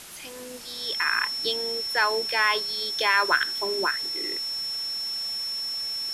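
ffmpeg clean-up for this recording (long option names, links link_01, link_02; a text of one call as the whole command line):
ffmpeg -i in.wav -af "bandreject=frequency=5400:width=30,afftdn=noise_reduction=30:noise_floor=-38" out.wav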